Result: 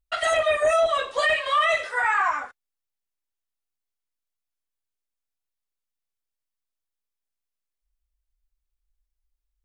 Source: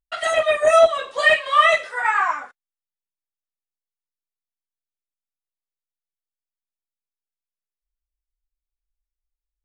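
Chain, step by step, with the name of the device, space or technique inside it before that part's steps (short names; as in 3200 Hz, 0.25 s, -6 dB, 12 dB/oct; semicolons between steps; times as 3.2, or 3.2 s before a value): car stereo with a boomy subwoofer (resonant low shelf 110 Hz +6 dB, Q 1.5; limiter -15 dBFS, peak gain reduction 11 dB); gain +1.5 dB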